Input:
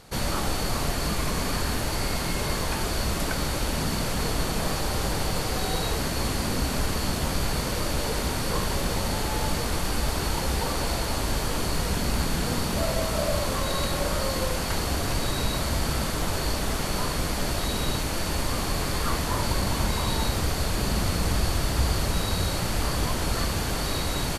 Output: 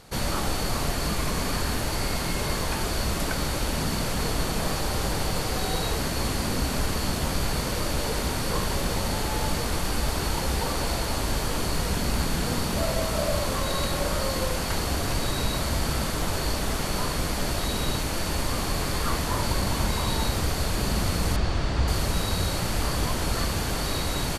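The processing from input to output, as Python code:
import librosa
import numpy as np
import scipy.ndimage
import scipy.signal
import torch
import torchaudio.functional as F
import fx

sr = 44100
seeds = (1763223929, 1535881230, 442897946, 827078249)

y = fx.air_absorb(x, sr, metres=110.0, at=(21.36, 21.88))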